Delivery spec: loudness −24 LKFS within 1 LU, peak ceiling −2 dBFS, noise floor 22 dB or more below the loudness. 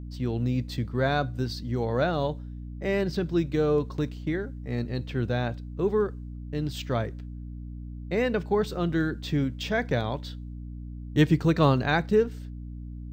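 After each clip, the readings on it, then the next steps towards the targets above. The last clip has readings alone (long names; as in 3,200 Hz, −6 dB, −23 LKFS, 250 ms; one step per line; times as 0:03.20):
mains hum 60 Hz; hum harmonics up to 300 Hz; level of the hum −35 dBFS; integrated loudness −27.5 LKFS; sample peak −9.0 dBFS; target loudness −24.0 LKFS
→ hum removal 60 Hz, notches 5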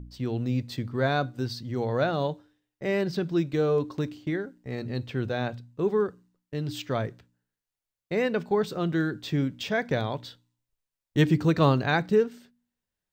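mains hum none found; integrated loudness −28.0 LKFS; sample peak −9.5 dBFS; target loudness −24.0 LKFS
→ level +4 dB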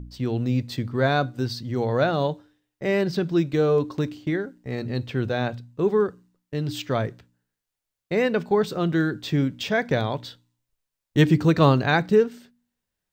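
integrated loudness −24.0 LKFS; sample peak −5.5 dBFS; background noise floor −85 dBFS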